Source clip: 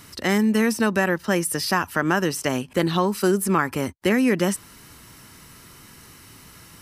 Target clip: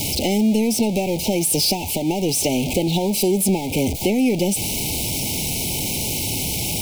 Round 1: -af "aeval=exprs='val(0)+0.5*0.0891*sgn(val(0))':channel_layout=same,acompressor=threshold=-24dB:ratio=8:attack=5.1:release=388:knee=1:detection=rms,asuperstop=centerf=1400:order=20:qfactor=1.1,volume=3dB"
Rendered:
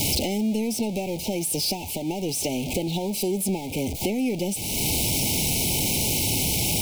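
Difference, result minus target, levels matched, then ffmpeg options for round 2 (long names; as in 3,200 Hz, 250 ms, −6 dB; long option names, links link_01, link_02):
downward compressor: peak gain reduction +7 dB
-af "aeval=exprs='val(0)+0.5*0.0891*sgn(val(0))':channel_layout=same,acompressor=threshold=-16dB:ratio=8:attack=5.1:release=388:knee=1:detection=rms,asuperstop=centerf=1400:order=20:qfactor=1.1,volume=3dB"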